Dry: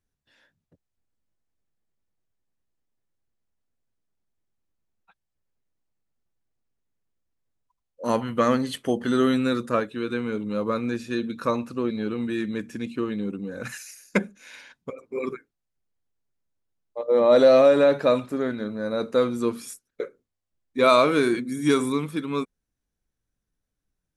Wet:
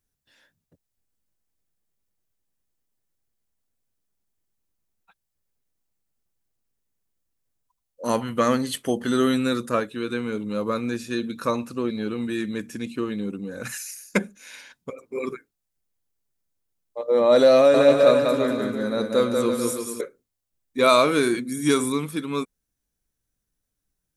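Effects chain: treble shelf 6 kHz +11 dB; 17.55–20.01 s: bouncing-ball echo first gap 190 ms, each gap 0.75×, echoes 5

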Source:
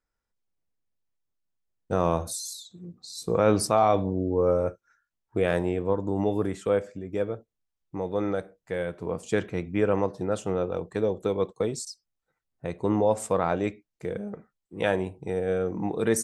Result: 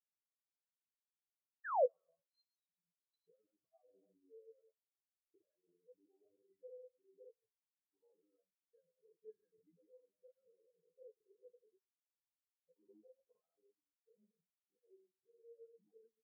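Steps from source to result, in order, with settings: low-pass 3 kHz 12 dB/octave; tilt EQ +3 dB/octave; de-hum 48.6 Hz, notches 6; transient shaper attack -4 dB, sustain +9 dB; peak limiter -19.5 dBFS, peak gain reduction 9.5 dB; compression 6:1, threshold -38 dBFS, peak gain reduction 13 dB; granulator, pitch spread up and down by 0 st; painted sound fall, 1.64–1.86 s, 450–1900 Hz -30 dBFS; doubling 18 ms -10 dB; on a send at -10.5 dB: reverberation RT60 3.1 s, pre-delay 3 ms; on the sum: spectral contrast expander 4:1

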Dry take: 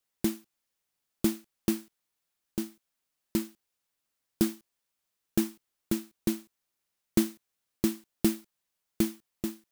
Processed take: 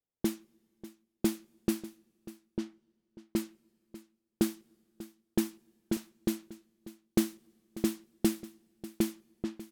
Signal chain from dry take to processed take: level-controlled noise filter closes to 550 Hz, open at -25 dBFS; on a send: delay 592 ms -17 dB; on the sum: two-slope reverb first 0.28 s, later 2.1 s, from -18 dB, DRR 19.5 dB; trim -1.5 dB

